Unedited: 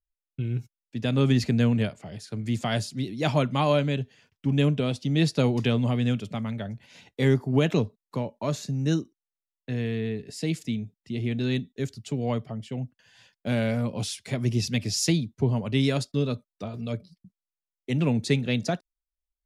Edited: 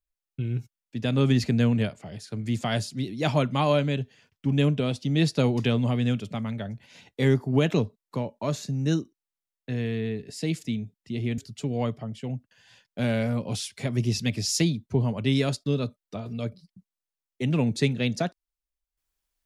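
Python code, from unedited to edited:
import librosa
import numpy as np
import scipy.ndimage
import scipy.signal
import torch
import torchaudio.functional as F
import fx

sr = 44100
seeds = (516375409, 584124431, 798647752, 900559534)

y = fx.edit(x, sr, fx.cut(start_s=11.38, length_s=0.48), tone=tone)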